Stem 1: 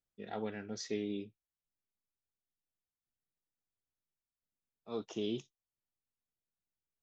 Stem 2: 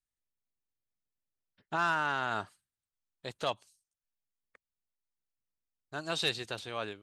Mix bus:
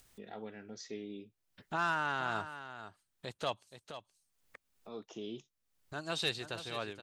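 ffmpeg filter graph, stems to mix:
ffmpeg -i stem1.wav -i stem2.wav -filter_complex "[0:a]volume=-6dB[link_01];[1:a]lowshelf=frequency=110:gain=9,volume=-3dB,asplit=2[link_02][link_03];[link_03]volume=-11.5dB,aecho=0:1:473:1[link_04];[link_01][link_02][link_04]amix=inputs=3:normalize=0,lowshelf=frequency=68:gain=-9.5,acompressor=mode=upward:threshold=-43dB:ratio=2.5" out.wav

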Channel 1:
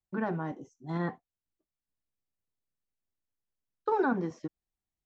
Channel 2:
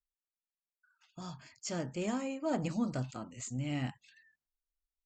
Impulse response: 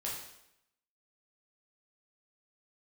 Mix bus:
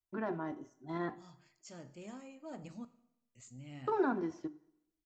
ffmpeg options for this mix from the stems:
-filter_complex "[0:a]bandreject=frequency=60:width_type=h:width=6,bandreject=frequency=120:width_type=h:width=6,bandreject=frequency=180:width_type=h:width=6,bandreject=frequency=240:width_type=h:width=6,bandreject=frequency=300:width_type=h:width=6,aecho=1:1:3:0.48,volume=-5.5dB,asplit=2[link_01][link_02];[link_02]volume=-15.5dB[link_03];[1:a]volume=-15dB,asplit=3[link_04][link_05][link_06];[link_04]atrim=end=2.85,asetpts=PTS-STARTPTS,afade=type=out:start_time=2.846:duration=0.004:curve=hsin[link_07];[link_05]atrim=start=2.85:end=3.35,asetpts=PTS-STARTPTS,volume=0[link_08];[link_06]atrim=start=3.35,asetpts=PTS-STARTPTS,afade=type=in:duration=0.004:curve=hsin[link_09];[link_07][link_08][link_09]concat=n=3:v=0:a=1,asplit=2[link_10][link_11];[link_11]volume=-12dB[link_12];[2:a]atrim=start_sample=2205[link_13];[link_03][link_12]amix=inputs=2:normalize=0[link_14];[link_14][link_13]afir=irnorm=-1:irlink=0[link_15];[link_01][link_10][link_15]amix=inputs=3:normalize=0"

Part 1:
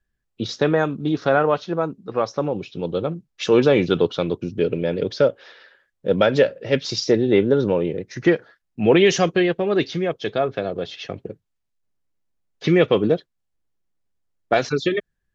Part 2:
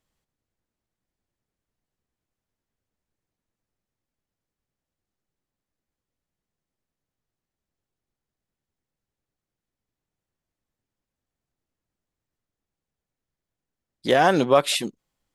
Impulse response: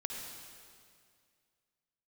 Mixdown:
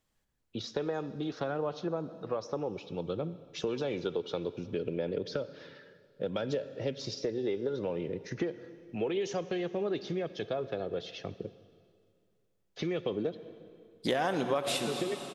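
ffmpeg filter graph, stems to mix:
-filter_complex "[0:a]acrossover=split=310|1200|3300[link_01][link_02][link_03][link_04];[link_01]acompressor=threshold=-30dB:ratio=4[link_05];[link_02]acompressor=threshold=-20dB:ratio=4[link_06];[link_03]acompressor=threshold=-43dB:ratio=4[link_07];[link_04]acompressor=threshold=-34dB:ratio=4[link_08];[link_05][link_06][link_07][link_08]amix=inputs=4:normalize=0,aphaser=in_gain=1:out_gain=1:delay=2.4:decay=0.26:speed=0.61:type=sinusoidal,adelay=150,volume=-9.5dB,asplit=2[link_09][link_10];[link_10]volume=-12.5dB[link_11];[1:a]volume=-3.5dB,asplit=2[link_12][link_13];[link_13]volume=-3.5dB[link_14];[2:a]atrim=start_sample=2205[link_15];[link_11][link_14]amix=inputs=2:normalize=0[link_16];[link_16][link_15]afir=irnorm=-1:irlink=0[link_17];[link_09][link_12][link_17]amix=inputs=3:normalize=0,acompressor=threshold=-29dB:ratio=4"

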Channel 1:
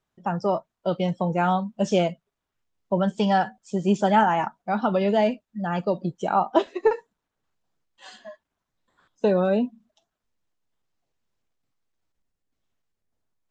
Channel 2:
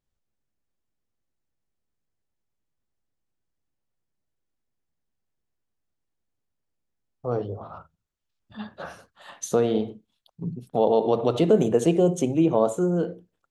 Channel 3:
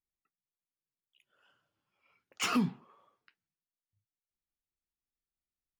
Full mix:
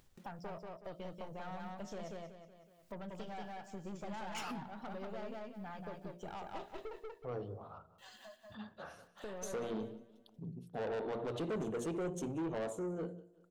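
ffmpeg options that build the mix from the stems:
ffmpeg -i stem1.wav -i stem2.wav -i stem3.wav -filter_complex "[0:a]acrusher=bits=9:mix=0:aa=0.000001,aeval=exprs='(tanh(12.6*val(0)+0.55)-tanh(0.55))/12.6':channel_layout=same,volume=-12.5dB,asplit=2[link_01][link_02];[link_02]volume=-8dB[link_03];[1:a]volume=-11.5dB,asplit=3[link_04][link_05][link_06];[link_05]volume=-23dB[link_07];[2:a]adelay=1950,volume=1.5dB[link_08];[link_06]apad=whole_len=595762[link_09];[link_01][link_09]sidechaincompress=threshold=-45dB:ratio=3:attack=12:release=1260[link_10];[link_10][link_08]amix=inputs=2:normalize=0,acompressor=threshold=-41dB:ratio=6,volume=0dB[link_11];[link_03][link_07]amix=inputs=2:normalize=0,aecho=0:1:185|370|555|740:1|0.27|0.0729|0.0197[link_12];[link_04][link_11][link_12]amix=inputs=3:normalize=0,bandreject=frequency=58.46:width_type=h:width=4,bandreject=frequency=116.92:width_type=h:width=4,bandreject=frequency=175.38:width_type=h:width=4,bandreject=frequency=233.84:width_type=h:width=4,bandreject=frequency=292.3:width_type=h:width=4,bandreject=frequency=350.76:width_type=h:width=4,bandreject=frequency=409.22:width_type=h:width=4,bandreject=frequency=467.68:width_type=h:width=4,bandreject=frequency=526.14:width_type=h:width=4,bandreject=frequency=584.6:width_type=h:width=4,bandreject=frequency=643.06:width_type=h:width=4,bandreject=frequency=701.52:width_type=h:width=4,acompressor=mode=upward:threshold=-47dB:ratio=2.5,asoftclip=type=tanh:threshold=-34dB" out.wav

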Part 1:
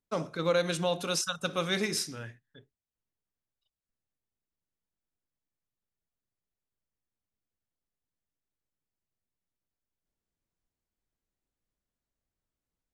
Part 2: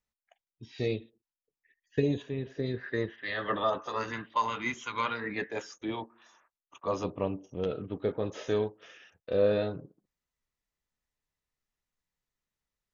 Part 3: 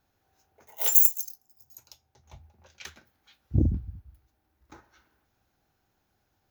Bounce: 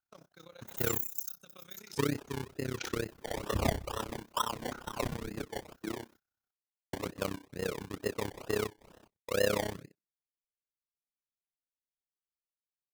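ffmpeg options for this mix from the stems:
ffmpeg -i stem1.wav -i stem2.wav -i stem3.wav -filter_complex "[0:a]acompressor=threshold=-31dB:ratio=12,volume=-16.5dB[link_01];[1:a]acrusher=samples=27:mix=1:aa=0.000001:lfo=1:lforange=16.2:lforate=2.2,volume=0dB,asplit=3[link_02][link_03][link_04];[link_02]atrim=end=6.16,asetpts=PTS-STARTPTS,afade=type=out:start_time=6.156:duration=0.004:curve=hsin[link_05];[link_03]atrim=start=6.16:end=6.93,asetpts=PTS-STARTPTS,volume=0[link_06];[link_04]atrim=start=6.93,asetpts=PTS-STARTPTS,afade=type=in:duration=0.004:curve=hsin[link_07];[link_05][link_06][link_07]concat=n=3:v=0:a=1,asplit=2[link_08][link_09];[2:a]acrossover=split=2700[link_10][link_11];[link_11]acompressor=threshold=-30dB:ratio=4:attack=1:release=60[link_12];[link_10][link_12]amix=inputs=2:normalize=0,equalizer=frequency=1400:width_type=o:width=0.35:gain=14.5,volume=-0.5dB[link_13];[link_09]apad=whole_len=570641[link_14];[link_01][link_14]sidechaincompress=threshold=-45dB:ratio=8:attack=16:release=329[link_15];[link_15][link_13]amix=inputs=2:normalize=0,highshelf=frequency=2900:gain=10,alimiter=limit=-19dB:level=0:latency=1:release=275,volume=0dB[link_16];[link_08][link_16]amix=inputs=2:normalize=0,agate=range=-22dB:threshold=-54dB:ratio=16:detection=peak,tremolo=f=32:d=0.919" out.wav

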